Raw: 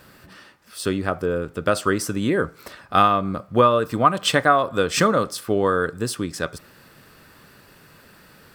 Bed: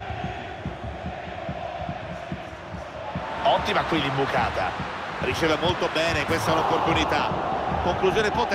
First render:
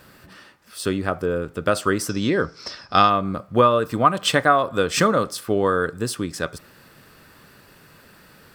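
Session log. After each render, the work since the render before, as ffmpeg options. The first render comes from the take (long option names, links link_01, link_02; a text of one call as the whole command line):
ffmpeg -i in.wav -filter_complex "[0:a]asettb=1/sr,asplit=3[link_01][link_02][link_03];[link_01]atrim=end=2.094[link_04];[link_02]atrim=start=2.09:end=3.1,asetpts=PTS-STARTPTS,afade=type=in:duration=0.004:curve=qsin,afade=type=out:start_time=1.006:duration=0.004:curve=qsin,lowpass=frequency=5300:width_type=q:width=12[link_05];[link_03]atrim=start=3.096[link_06];[link_04][link_05]acrossfade=duration=0.004:curve1=hsin:curve2=qsin[link_07];[link_07][link_06]acrossfade=duration=0.004:curve1=qsin:curve2=hsin" out.wav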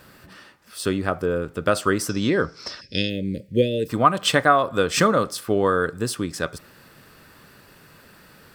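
ffmpeg -i in.wav -filter_complex "[0:a]asplit=3[link_01][link_02][link_03];[link_01]afade=type=out:start_time=2.8:duration=0.02[link_04];[link_02]asuperstop=centerf=1000:order=12:qfactor=0.74,afade=type=in:start_time=2.8:duration=0.02,afade=type=out:start_time=3.88:duration=0.02[link_05];[link_03]afade=type=in:start_time=3.88:duration=0.02[link_06];[link_04][link_05][link_06]amix=inputs=3:normalize=0" out.wav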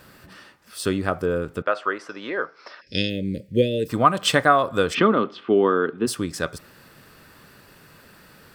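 ffmpeg -i in.wav -filter_complex "[0:a]asettb=1/sr,asplit=3[link_01][link_02][link_03];[link_01]atrim=end=1.624[link_04];[link_02]atrim=start=1.62:end=2.87,asetpts=PTS-STARTPTS,afade=type=in:duration=0.004:curve=qsin,afade=type=out:start_time=1.246:duration=0.004:curve=qsin,highpass=580,lowpass=2200[link_05];[link_03]atrim=start=2.866[link_06];[link_04][link_05]acrossfade=duration=0.004:curve1=hsin:curve2=qsin[link_07];[link_07][link_06]acrossfade=duration=0.004:curve1=qsin:curve2=hsin,asplit=3[link_08][link_09][link_10];[link_08]afade=type=out:start_time=4.93:duration=0.02[link_11];[link_09]highpass=frequency=150:width=0.5412,highpass=frequency=150:width=1.3066,equalizer=frequency=160:width_type=q:width=4:gain=-5,equalizer=frequency=240:width_type=q:width=4:gain=6,equalizer=frequency=380:width_type=q:width=4:gain=7,equalizer=frequency=550:width_type=q:width=4:gain=-7,equalizer=frequency=1700:width_type=q:width=4:gain=-4,equalizer=frequency=3100:width_type=q:width=4:gain=6,lowpass=frequency=3100:width=0.5412,lowpass=frequency=3100:width=1.3066,afade=type=in:start_time=4.93:duration=0.02,afade=type=out:start_time=6.06:duration=0.02[link_12];[link_10]afade=type=in:start_time=6.06:duration=0.02[link_13];[link_11][link_12][link_13]amix=inputs=3:normalize=0" out.wav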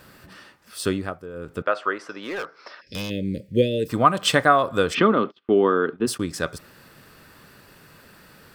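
ffmpeg -i in.wav -filter_complex "[0:a]asplit=3[link_01][link_02][link_03];[link_01]afade=type=out:start_time=2.2:duration=0.02[link_04];[link_02]volume=26dB,asoftclip=hard,volume=-26dB,afade=type=in:start_time=2.2:duration=0.02,afade=type=out:start_time=3.09:duration=0.02[link_05];[link_03]afade=type=in:start_time=3.09:duration=0.02[link_06];[link_04][link_05][link_06]amix=inputs=3:normalize=0,asettb=1/sr,asplit=3[link_07][link_08][link_09];[link_07]atrim=end=5.104[link_10];[link_08]atrim=start=5.1:end=6.21,asetpts=PTS-STARTPTS,afade=type=in:duration=0.004:curve=qsin,afade=type=out:start_time=1.106:duration=0.004:curve=qsin,agate=range=-28dB:threshold=-38dB:ratio=16:release=100:detection=peak[link_11];[link_09]atrim=start=6.206[link_12];[link_10][link_11]acrossfade=duration=0.004:curve1=hsin:curve2=qsin[link_13];[link_13][link_12]acrossfade=duration=0.004:curve1=qsin:curve2=hsin,asplit=3[link_14][link_15][link_16];[link_14]atrim=end=1.19,asetpts=PTS-STARTPTS,afade=type=out:start_time=0.89:duration=0.3:silence=0.199526[link_17];[link_15]atrim=start=1.19:end=1.33,asetpts=PTS-STARTPTS,volume=-14dB[link_18];[link_16]atrim=start=1.33,asetpts=PTS-STARTPTS,afade=type=in:duration=0.3:silence=0.199526[link_19];[link_17][link_18][link_19]concat=n=3:v=0:a=1" out.wav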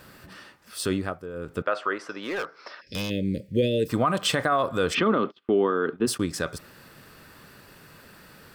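ffmpeg -i in.wav -af "alimiter=limit=-13.5dB:level=0:latency=1:release=30" out.wav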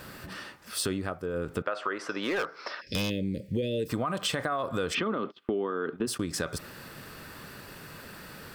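ffmpeg -i in.wav -filter_complex "[0:a]asplit=2[link_01][link_02];[link_02]alimiter=limit=-24dB:level=0:latency=1:release=85,volume=-3dB[link_03];[link_01][link_03]amix=inputs=2:normalize=0,acompressor=threshold=-27dB:ratio=6" out.wav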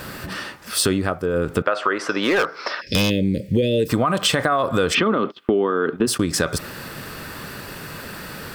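ffmpeg -i in.wav -af "volume=11dB" out.wav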